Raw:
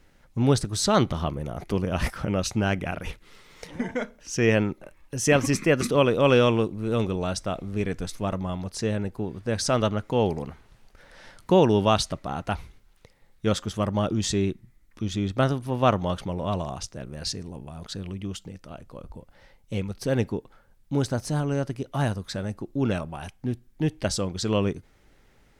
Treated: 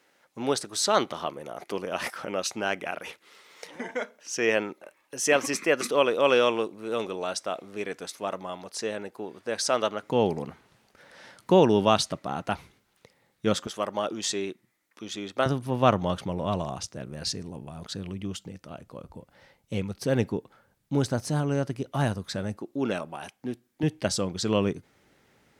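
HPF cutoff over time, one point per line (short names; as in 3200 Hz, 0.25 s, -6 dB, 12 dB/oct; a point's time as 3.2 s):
410 Hz
from 10.03 s 150 Hz
from 13.67 s 420 Hz
from 15.46 s 100 Hz
from 22.57 s 260 Hz
from 23.83 s 120 Hz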